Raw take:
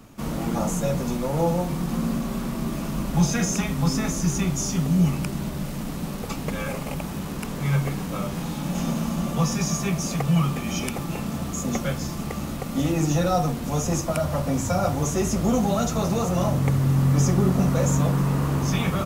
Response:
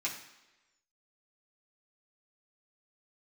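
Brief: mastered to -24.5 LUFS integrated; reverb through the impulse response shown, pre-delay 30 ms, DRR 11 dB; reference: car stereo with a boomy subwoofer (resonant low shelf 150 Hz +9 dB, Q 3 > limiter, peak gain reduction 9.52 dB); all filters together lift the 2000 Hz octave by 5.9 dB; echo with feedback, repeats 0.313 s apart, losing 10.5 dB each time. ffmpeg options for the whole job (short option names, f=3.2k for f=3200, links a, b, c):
-filter_complex "[0:a]equalizer=f=2k:t=o:g=7.5,aecho=1:1:313|626|939:0.299|0.0896|0.0269,asplit=2[a][b];[1:a]atrim=start_sample=2205,adelay=30[c];[b][c]afir=irnorm=-1:irlink=0,volume=-15dB[d];[a][d]amix=inputs=2:normalize=0,lowshelf=f=150:t=q:w=3:g=9,volume=-1.5dB,alimiter=limit=-15dB:level=0:latency=1"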